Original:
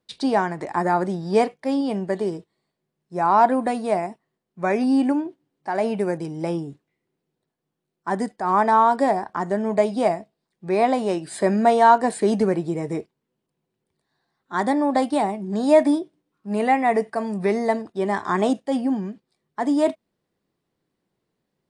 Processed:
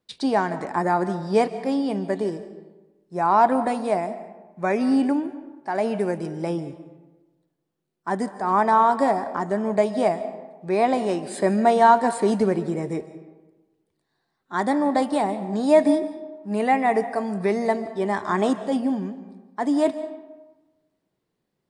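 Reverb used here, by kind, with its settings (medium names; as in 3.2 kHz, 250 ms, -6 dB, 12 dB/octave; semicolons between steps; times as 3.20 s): algorithmic reverb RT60 1.2 s, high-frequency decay 0.55×, pre-delay 105 ms, DRR 13 dB; trim -1 dB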